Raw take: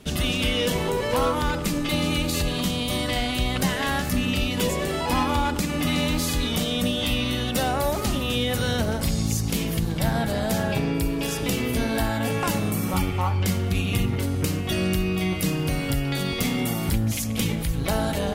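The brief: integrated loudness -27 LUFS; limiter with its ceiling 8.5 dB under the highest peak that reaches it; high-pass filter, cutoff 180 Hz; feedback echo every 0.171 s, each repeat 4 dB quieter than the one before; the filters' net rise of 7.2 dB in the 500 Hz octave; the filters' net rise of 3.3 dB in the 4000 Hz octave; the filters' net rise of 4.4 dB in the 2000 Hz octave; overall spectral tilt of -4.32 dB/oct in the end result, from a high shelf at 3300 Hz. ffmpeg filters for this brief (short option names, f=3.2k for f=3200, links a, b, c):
-af "highpass=180,equalizer=f=500:t=o:g=8.5,equalizer=f=2k:t=o:g=5.5,highshelf=f=3.3k:g=-6,equalizer=f=4k:t=o:g=6,alimiter=limit=-14dB:level=0:latency=1,aecho=1:1:171|342|513|684|855|1026|1197|1368|1539:0.631|0.398|0.25|0.158|0.0994|0.0626|0.0394|0.0249|0.0157,volume=-5.5dB"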